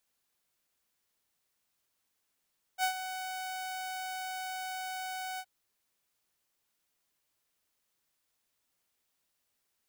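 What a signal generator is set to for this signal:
note with an ADSR envelope saw 748 Hz, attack 55 ms, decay 94 ms, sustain −11 dB, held 2.61 s, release 57 ms −23 dBFS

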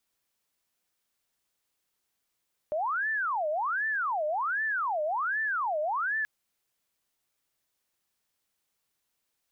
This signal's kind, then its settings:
siren wail 601–1,770 Hz 1.3 per second sine −26.5 dBFS 3.53 s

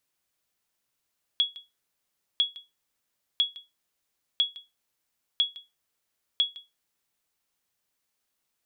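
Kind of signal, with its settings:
ping with an echo 3,350 Hz, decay 0.21 s, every 1.00 s, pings 6, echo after 0.16 s, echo −20 dB −15 dBFS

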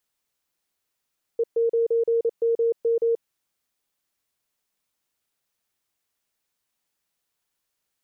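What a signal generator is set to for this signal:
Morse code "E9MM" 28 words per minute 462 Hz −18 dBFS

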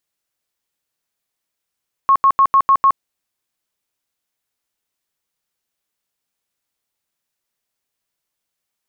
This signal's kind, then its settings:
tone bursts 1,090 Hz, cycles 73, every 0.15 s, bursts 6, −8 dBFS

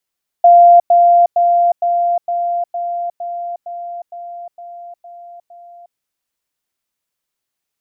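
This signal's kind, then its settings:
level staircase 695 Hz −3 dBFS, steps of −3 dB, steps 12, 0.36 s 0.10 s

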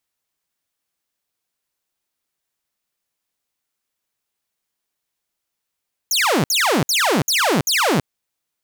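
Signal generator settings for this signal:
repeated falling chirps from 7,000 Hz, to 120 Hz, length 0.33 s saw, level −12 dB, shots 5, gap 0.06 s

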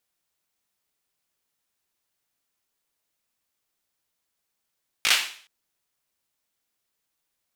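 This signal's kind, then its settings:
synth clap length 0.42 s, bursts 4, apart 18 ms, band 2,600 Hz, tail 0.48 s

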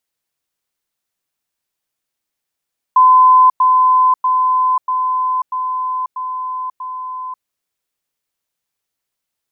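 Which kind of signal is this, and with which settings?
level staircase 1,020 Hz −5 dBFS, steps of −3 dB, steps 7, 0.54 s 0.10 s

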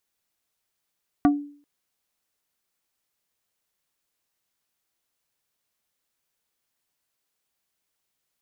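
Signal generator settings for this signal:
struck wood plate, length 0.39 s, lowest mode 289 Hz, decay 0.48 s, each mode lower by 5.5 dB, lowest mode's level −12 dB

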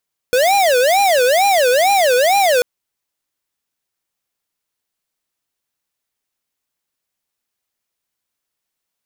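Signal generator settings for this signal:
siren wail 489–807 Hz 2.2 per second square −13 dBFS 2.29 s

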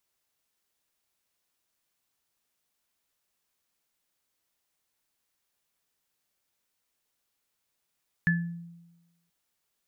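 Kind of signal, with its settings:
inharmonic partials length 1.03 s, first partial 170 Hz, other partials 1,730 Hz, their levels 1 dB, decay 1.09 s, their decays 0.32 s, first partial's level −21 dB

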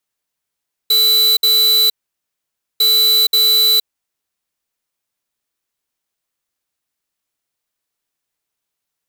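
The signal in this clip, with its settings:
beeps in groups square 3,970 Hz, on 0.47 s, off 0.06 s, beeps 2, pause 0.90 s, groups 2, −12 dBFS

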